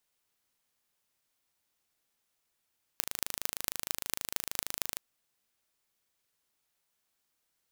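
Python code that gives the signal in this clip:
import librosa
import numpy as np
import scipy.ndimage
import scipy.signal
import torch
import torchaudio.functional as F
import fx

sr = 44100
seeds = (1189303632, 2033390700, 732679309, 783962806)

y = fx.impulse_train(sr, length_s=1.97, per_s=26.4, accent_every=6, level_db=-1.5)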